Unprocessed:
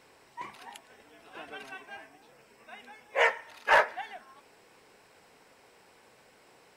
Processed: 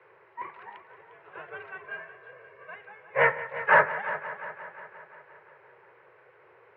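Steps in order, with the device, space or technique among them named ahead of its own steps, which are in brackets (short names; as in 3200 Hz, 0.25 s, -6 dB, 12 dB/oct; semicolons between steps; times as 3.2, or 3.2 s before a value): steep high-pass 350 Hz 96 dB/oct; 1.84–2.76 comb 1.8 ms, depth 99%; multi-head echo 0.176 s, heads first and second, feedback 58%, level -16 dB; sub-octave bass pedal (octaver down 2 oct, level -5 dB; speaker cabinet 65–2000 Hz, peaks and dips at 72 Hz -8 dB, 110 Hz -5 dB, 220 Hz -5 dB, 740 Hz -9 dB); gain +5 dB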